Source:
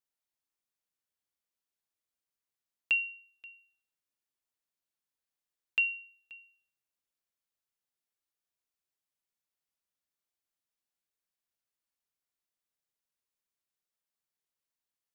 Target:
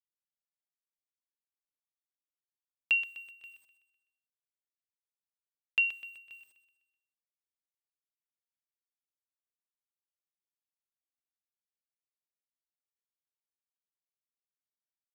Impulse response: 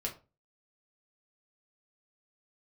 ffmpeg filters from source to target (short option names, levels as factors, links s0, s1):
-filter_complex "[0:a]equalizer=f=140:t=o:w=0.97:g=-7.5,acrusher=bits=10:mix=0:aa=0.000001,asplit=2[s0][s1];[s1]aecho=0:1:126|252|378|504|630:0.251|0.121|0.0579|0.0278|0.0133[s2];[s0][s2]amix=inputs=2:normalize=0,volume=1.12"